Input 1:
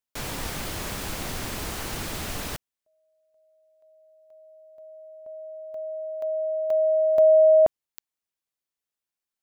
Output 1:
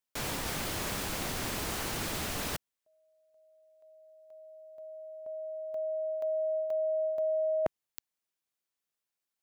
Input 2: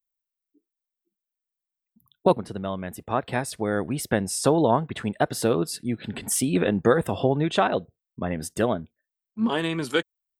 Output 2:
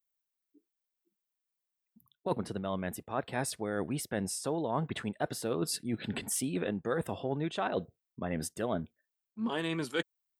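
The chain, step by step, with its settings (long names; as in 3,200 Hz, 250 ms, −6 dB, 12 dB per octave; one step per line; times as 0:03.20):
reversed playback
downward compressor 8 to 1, threshold −29 dBFS
reversed playback
low-shelf EQ 77 Hz −6.5 dB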